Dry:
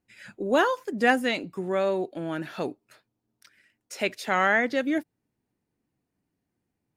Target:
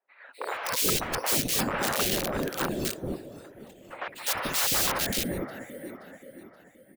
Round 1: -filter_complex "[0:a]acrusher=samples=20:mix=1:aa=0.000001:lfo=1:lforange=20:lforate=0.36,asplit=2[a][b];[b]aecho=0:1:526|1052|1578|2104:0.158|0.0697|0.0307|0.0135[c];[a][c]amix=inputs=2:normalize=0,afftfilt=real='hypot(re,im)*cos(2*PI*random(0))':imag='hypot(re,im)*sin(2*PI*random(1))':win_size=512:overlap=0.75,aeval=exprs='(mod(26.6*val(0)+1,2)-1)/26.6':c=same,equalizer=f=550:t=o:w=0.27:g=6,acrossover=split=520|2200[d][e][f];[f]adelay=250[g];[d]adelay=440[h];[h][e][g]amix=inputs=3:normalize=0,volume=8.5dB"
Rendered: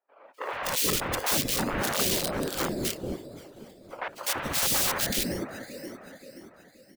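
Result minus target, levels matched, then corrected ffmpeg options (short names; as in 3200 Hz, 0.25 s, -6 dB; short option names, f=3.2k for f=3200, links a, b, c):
decimation with a swept rate: distortion +11 dB
-filter_complex "[0:a]acrusher=samples=6:mix=1:aa=0.000001:lfo=1:lforange=6:lforate=0.36,asplit=2[a][b];[b]aecho=0:1:526|1052|1578|2104:0.158|0.0697|0.0307|0.0135[c];[a][c]amix=inputs=2:normalize=0,afftfilt=real='hypot(re,im)*cos(2*PI*random(0))':imag='hypot(re,im)*sin(2*PI*random(1))':win_size=512:overlap=0.75,aeval=exprs='(mod(26.6*val(0)+1,2)-1)/26.6':c=same,equalizer=f=550:t=o:w=0.27:g=6,acrossover=split=520|2200[d][e][f];[f]adelay=250[g];[d]adelay=440[h];[h][e][g]amix=inputs=3:normalize=0,volume=8.5dB"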